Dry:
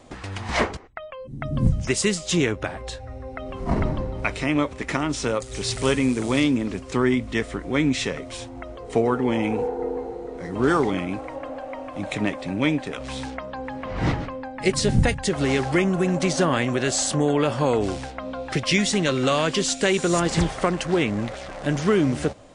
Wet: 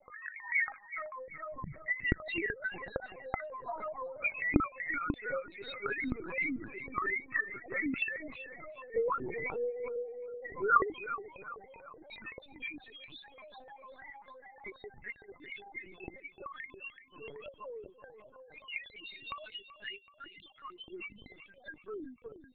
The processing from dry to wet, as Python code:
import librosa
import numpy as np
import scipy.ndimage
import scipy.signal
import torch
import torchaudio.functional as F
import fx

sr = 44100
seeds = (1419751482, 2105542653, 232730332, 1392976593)

y = fx.tracing_dist(x, sr, depth_ms=0.066)
y = fx.rider(y, sr, range_db=4, speed_s=2.0)
y = fx.bandpass_q(y, sr, hz=fx.steps((0.0, 2000.0), (10.92, 6600.0)), q=1.1)
y = fx.spec_topn(y, sr, count=2)
y = fx.echo_feedback(y, sr, ms=380, feedback_pct=41, wet_db=-12.0)
y = fx.lpc_vocoder(y, sr, seeds[0], excitation='pitch_kept', order=10)
y = y * 10.0 ** (4.5 / 20.0)